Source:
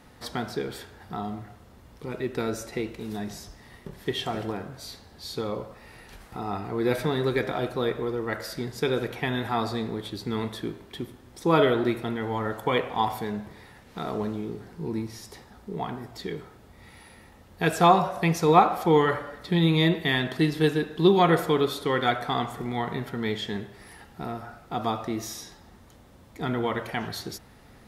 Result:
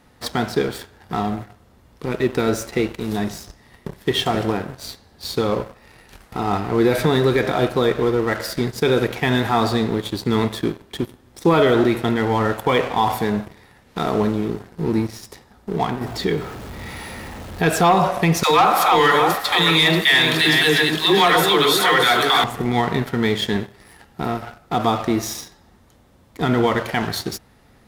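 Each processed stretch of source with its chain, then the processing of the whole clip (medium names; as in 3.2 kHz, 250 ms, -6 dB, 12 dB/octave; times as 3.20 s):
16.01–17.69 s: jump at every zero crossing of -34.5 dBFS + treble shelf 6.6 kHz -3 dB
18.43–22.44 s: backward echo that repeats 317 ms, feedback 47%, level -6 dB + tilt shelf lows -9.5 dB, about 670 Hz + phase dispersion lows, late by 88 ms, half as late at 470 Hz
whole clip: waveshaping leveller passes 2; peak limiter -11 dBFS; trim +3 dB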